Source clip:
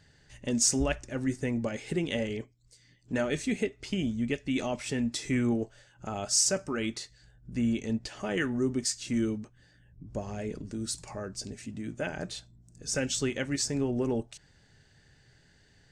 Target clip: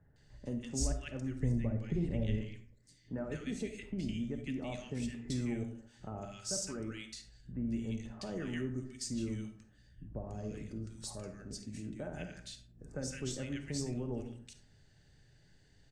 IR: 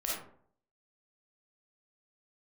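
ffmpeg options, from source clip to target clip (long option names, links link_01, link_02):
-filter_complex "[0:a]asettb=1/sr,asplit=3[link_01][link_02][link_03];[link_01]atrim=end=1.394[link_04];[link_02]atrim=start=1.39:end=2.38,asetpts=PTS-STARTPTS,afade=type=in:duration=0.004:curve=qsin,afade=type=out:start_time=0.986:duration=0.004:curve=qsin,aemphasis=mode=reproduction:type=bsi[link_05];[link_03]atrim=start=2.376[link_06];[link_04][link_05]acrossfade=duration=0.004:curve1=hsin:curve2=qsin[link_07];[link_07][link_06]acrossfade=duration=0.004:curve1=qsin:curve2=hsin,acrossover=split=1500[link_08][link_09];[link_09]adelay=160[link_10];[link_08][link_10]amix=inputs=2:normalize=0,acrossover=split=140[link_11][link_12];[link_12]acompressor=threshold=-41dB:ratio=1.5[link_13];[link_11][link_13]amix=inputs=2:normalize=0,asplit=2[link_14][link_15];[1:a]atrim=start_sample=2205,lowshelf=frequency=290:gain=11[link_16];[link_15][link_16]afir=irnorm=-1:irlink=0,volume=-10.5dB[link_17];[link_14][link_17]amix=inputs=2:normalize=0,volume=-8dB"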